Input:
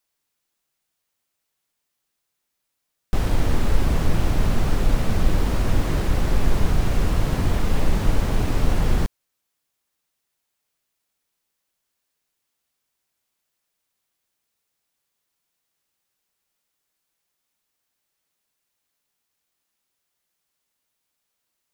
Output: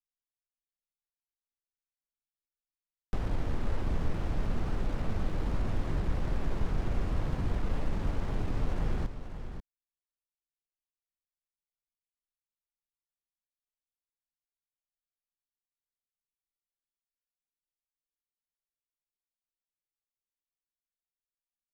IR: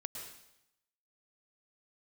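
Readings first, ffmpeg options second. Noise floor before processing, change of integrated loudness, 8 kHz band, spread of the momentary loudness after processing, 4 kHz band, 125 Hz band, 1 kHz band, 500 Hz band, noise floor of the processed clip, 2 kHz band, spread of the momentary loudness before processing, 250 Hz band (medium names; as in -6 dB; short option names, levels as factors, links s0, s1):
-79 dBFS, -11.0 dB, -19.5 dB, 5 LU, -15.5 dB, -10.5 dB, -11.0 dB, -10.5 dB, under -85 dBFS, -12.5 dB, 1 LU, -10.5 dB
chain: -filter_complex "[0:a]anlmdn=10,acrossover=split=200|1900[s0][s1][s2];[s0]acompressor=threshold=0.1:ratio=4[s3];[s1]acompressor=threshold=0.0224:ratio=4[s4];[s2]acompressor=threshold=0.00355:ratio=4[s5];[s3][s4][s5]amix=inputs=3:normalize=0,asplit=2[s6][s7];[s7]aecho=0:1:538:0.335[s8];[s6][s8]amix=inputs=2:normalize=0,volume=0.473"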